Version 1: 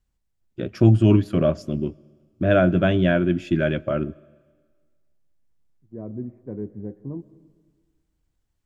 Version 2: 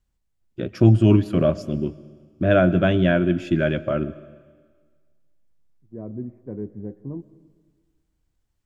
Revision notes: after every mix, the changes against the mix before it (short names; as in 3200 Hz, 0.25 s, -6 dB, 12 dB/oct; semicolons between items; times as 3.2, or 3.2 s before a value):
first voice: send +8.5 dB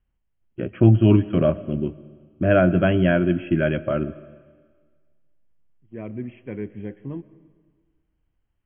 second voice: remove Gaussian blur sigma 8.1 samples; master: add brick-wall FIR low-pass 3300 Hz